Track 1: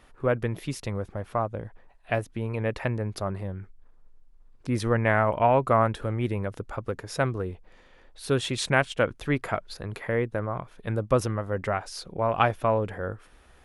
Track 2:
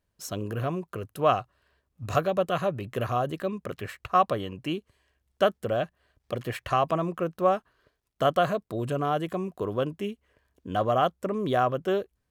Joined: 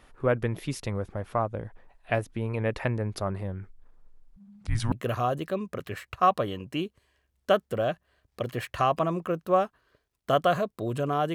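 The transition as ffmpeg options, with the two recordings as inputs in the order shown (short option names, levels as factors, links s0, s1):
-filter_complex "[0:a]asettb=1/sr,asplit=3[s0][s1][s2];[s0]atrim=end=4.364[s3];[s1]atrim=start=4.36:end=4.92,asetpts=PTS-STARTPTS,afade=t=in:d=0.004:c=qsin,afade=t=out:st=0.556:d=0.004:c=qsin,afreqshift=-220[s4];[s2]atrim=start=4.916[s5];[s3][s4]acrossfade=d=0.004:c1=hsin:c2=qsin[s6];[s6][s5]acrossfade=d=0.004:c1=qsin:c2=hsin,apad=whole_dur=11.34,atrim=end=11.34,atrim=end=4.922[s7];[1:a]atrim=start=2.838:end=9.26[s8];[s7][s8]acrossfade=d=0.004:c1=hsin:c2=hsin"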